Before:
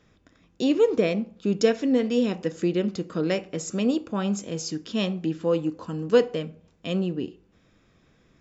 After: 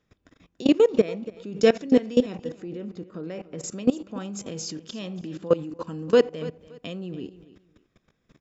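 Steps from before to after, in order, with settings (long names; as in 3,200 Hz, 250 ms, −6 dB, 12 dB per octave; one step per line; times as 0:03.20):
0:02.37–0:03.64: high-shelf EQ 2,500 Hz −11 dB
output level in coarse steps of 20 dB
repeating echo 285 ms, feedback 24%, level −17.5 dB
level +6 dB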